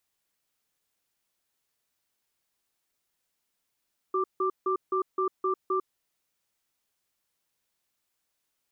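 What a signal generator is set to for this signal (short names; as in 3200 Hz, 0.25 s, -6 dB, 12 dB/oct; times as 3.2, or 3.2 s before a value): cadence 376 Hz, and 1180 Hz, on 0.10 s, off 0.16 s, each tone -26.5 dBFS 1.80 s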